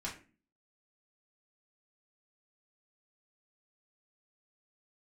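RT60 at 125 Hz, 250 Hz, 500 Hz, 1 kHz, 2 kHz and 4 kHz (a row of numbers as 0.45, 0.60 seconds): 0.55, 0.60, 0.40, 0.30, 0.35, 0.25 seconds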